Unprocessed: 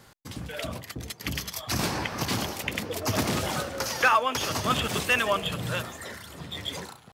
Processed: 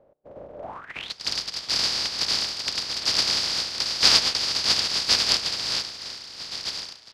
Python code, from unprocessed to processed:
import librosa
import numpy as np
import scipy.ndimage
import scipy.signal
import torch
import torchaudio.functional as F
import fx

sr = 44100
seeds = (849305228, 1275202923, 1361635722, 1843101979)

y = fx.spec_flatten(x, sr, power=0.1)
y = fx.rev_spring(y, sr, rt60_s=2.9, pass_ms=(32,), chirp_ms=50, drr_db=18.0)
y = fx.filter_sweep_lowpass(y, sr, from_hz=570.0, to_hz=4800.0, start_s=0.6, end_s=1.14, q=7.0)
y = y * librosa.db_to_amplitude(-1.0)